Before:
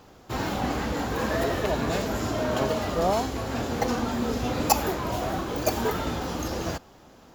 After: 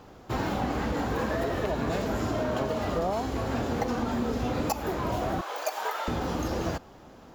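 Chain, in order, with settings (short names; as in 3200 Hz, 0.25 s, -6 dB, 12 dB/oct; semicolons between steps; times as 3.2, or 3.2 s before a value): 5.41–6.08 HPF 620 Hz 24 dB/oct; compressor 6:1, threshold -27 dBFS, peak gain reduction 12.5 dB; high shelf 2900 Hz -7 dB; gain +2.5 dB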